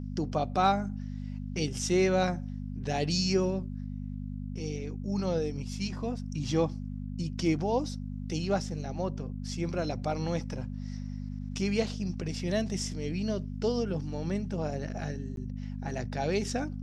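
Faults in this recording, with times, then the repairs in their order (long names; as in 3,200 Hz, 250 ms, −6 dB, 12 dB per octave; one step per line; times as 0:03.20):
mains hum 50 Hz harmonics 5 −37 dBFS
0:15.36–0:15.37: drop-out 12 ms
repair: hum removal 50 Hz, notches 5
repair the gap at 0:15.36, 12 ms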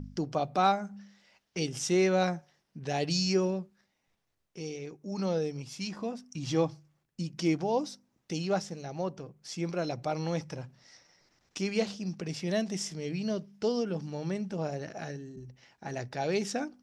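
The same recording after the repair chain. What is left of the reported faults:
none of them is left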